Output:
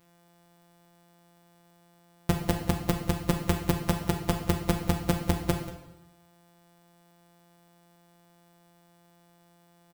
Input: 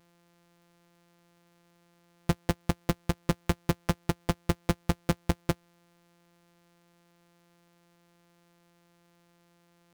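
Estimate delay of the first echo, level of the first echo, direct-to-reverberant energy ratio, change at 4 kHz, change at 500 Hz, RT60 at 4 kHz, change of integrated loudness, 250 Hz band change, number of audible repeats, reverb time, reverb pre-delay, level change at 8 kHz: 186 ms, -17.0 dB, 3.0 dB, +2.5 dB, +2.0 dB, 0.85 s, +2.0 dB, +2.0 dB, 1, 0.95 s, 9 ms, +4.0 dB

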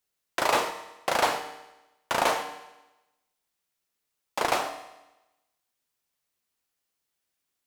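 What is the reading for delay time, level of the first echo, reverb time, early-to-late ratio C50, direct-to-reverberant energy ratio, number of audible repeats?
no echo, no echo, 1.0 s, 10.0 dB, 7.0 dB, no echo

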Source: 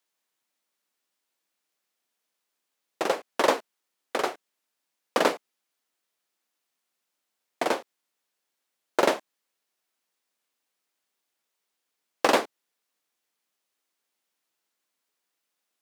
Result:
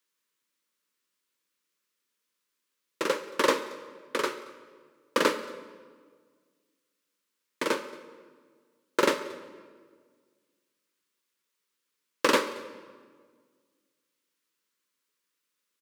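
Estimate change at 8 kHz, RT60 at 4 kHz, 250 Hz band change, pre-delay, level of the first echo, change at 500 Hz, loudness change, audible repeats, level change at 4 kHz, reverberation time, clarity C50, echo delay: +0.5 dB, 1.2 s, +0.5 dB, 21 ms, -23.5 dB, -2.0 dB, -1.5 dB, 1, 0.0 dB, 1.7 s, 12.0 dB, 227 ms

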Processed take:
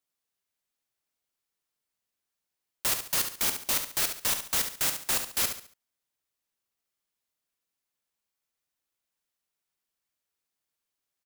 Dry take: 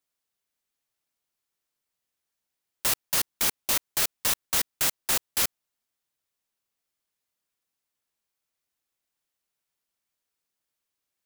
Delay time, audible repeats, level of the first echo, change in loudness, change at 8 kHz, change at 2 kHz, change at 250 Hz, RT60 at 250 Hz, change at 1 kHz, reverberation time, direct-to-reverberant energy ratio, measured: 70 ms, 3, -8.0 dB, -2.0 dB, -2.0 dB, -2.0 dB, -1.5 dB, no reverb, -2.0 dB, no reverb, no reverb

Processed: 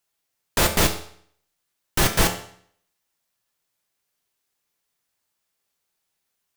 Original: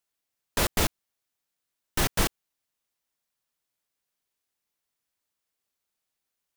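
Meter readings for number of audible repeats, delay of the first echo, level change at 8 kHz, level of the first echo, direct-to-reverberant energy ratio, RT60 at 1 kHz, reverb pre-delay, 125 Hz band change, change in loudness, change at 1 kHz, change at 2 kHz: no echo, no echo, +6.5 dB, no echo, 4.0 dB, 0.60 s, 3 ms, +6.0 dB, +6.0 dB, +6.5 dB, +6.5 dB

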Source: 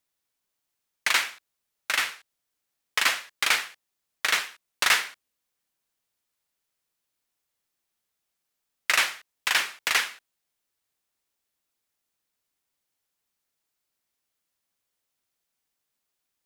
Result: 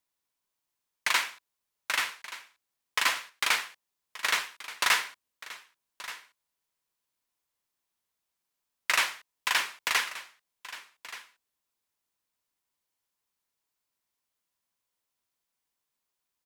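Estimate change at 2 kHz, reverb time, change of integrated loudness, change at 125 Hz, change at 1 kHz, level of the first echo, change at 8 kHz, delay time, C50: -3.5 dB, no reverb, -3.5 dB, no reading, -1.0 dB, -16.0 dB, -3.5 dB, 1178 ms, no reverb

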